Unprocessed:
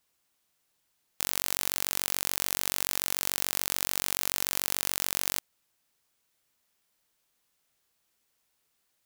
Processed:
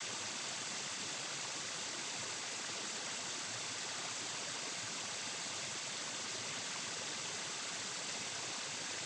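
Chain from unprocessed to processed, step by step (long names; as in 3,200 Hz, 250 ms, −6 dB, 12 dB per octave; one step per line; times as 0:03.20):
sign of each sample alone
cochlear-implant simulation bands 16
level −2.5 dB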